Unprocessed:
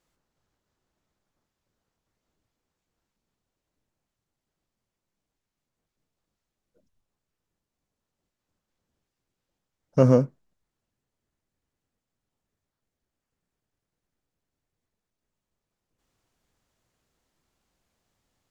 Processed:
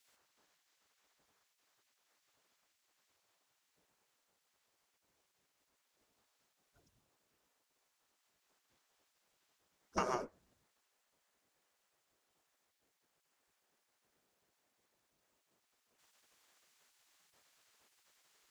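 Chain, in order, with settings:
gate on every frequency bin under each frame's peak −15 dB weak
downward compressor 10 to 1, threshold −41 dBFS, peak gain reduction 13.5 dB
level +8.5 dB

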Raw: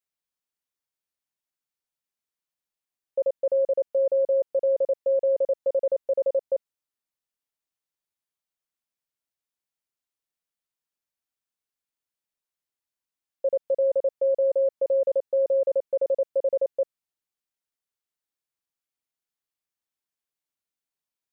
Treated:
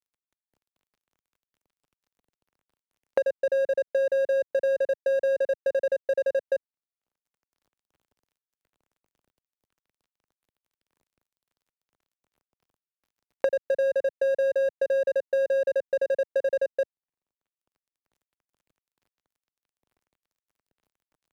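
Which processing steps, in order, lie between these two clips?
running median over 41 samples
multiband upward and downward compressor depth 100%

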